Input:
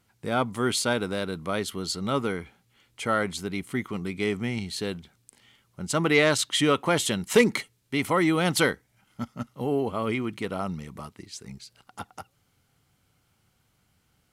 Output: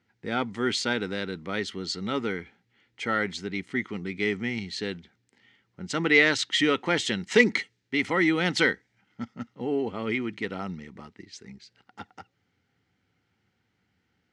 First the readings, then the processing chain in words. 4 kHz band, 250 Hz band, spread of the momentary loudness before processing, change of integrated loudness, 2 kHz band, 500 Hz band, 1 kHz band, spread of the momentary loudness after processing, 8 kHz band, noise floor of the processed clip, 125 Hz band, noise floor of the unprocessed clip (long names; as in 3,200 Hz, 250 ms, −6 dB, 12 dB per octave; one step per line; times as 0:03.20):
0.0 dB, −1.0 dB, 19 LU, −0.5 dB, +3.5 dB, −2.5 dB, −3.5 dB, 20 LU, −7.0 dB, −75 dBFS, −5.0 dB, −70 dBFS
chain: loudspeaker in its box 110–6,300 Hz, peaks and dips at 140 Hz −9 dB, 620 Hz −9 dB, 1,100 Hz −9 dB, 1,900 Hz +7 dB
one half of a high-frequency compander decoder only